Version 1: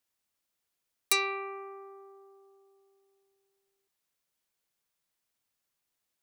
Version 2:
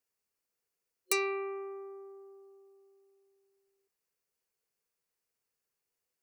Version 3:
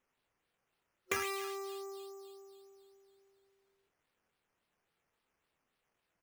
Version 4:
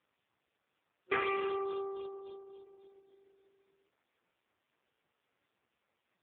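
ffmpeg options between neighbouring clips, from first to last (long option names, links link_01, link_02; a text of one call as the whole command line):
ffmpeg -i in.wav -af "superequalizer=7b=2.51:13b=0.501,volume=-4dB" out.wav
ffmpeg -i in.wav -filter_complex "[0:a]acrossover=split=1200|3100[link_01][link_02][link_03];[link_01]acompressor=threshold=-41dB:ratio=4[link_04];[link_02]acompressor=threshold=-38dB:ratio=4[link_05];[link_03]acompressor=threshold=-47dB:ratio=4[link_06];[link_04][link_05][link_06]amix=inputs=3:normalize=0,acrusher=samples=9:mix=1:aa=0.000001:lfo=1:lforange=5.4:lforate=3.6,asplit=2[link_07][link_08];[link_08]adelay=27,volume=-11dB[link_09];[link_07][link_09]amix=inputs=2:normalize=0,volume=3dB" out.wav
ffmpeg -i in.wav -af "volume=7dB" -ar 8000 -c:a libopencore_amrnb -b:a 5150 out.amr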